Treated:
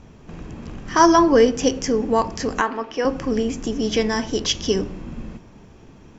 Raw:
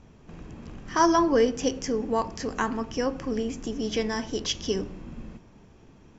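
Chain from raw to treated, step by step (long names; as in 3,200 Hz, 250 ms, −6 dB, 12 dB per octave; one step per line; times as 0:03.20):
0:02.61–0:03.05: three-way crossover with the lows and the highs turned down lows −21 dB, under 300 Hz, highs −22 dB, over 4,800 Hz
level +7 dB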